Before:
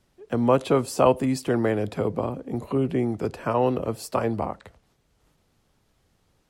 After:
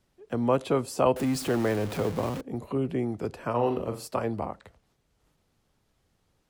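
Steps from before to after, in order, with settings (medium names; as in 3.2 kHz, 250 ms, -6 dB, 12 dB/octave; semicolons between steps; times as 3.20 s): 1.16–2.41 s: jump at every zero crossing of -28 dBFS; 3.50–4.08 s: flutter echo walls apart 7.2 m, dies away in 0.35 s; trim -4.5 dB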